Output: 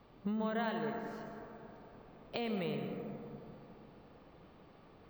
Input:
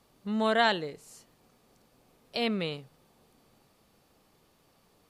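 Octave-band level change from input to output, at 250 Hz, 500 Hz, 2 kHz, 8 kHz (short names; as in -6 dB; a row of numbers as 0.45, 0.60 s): -4.5 dB, -7.0 dB, -12.5 dB, under -20 dB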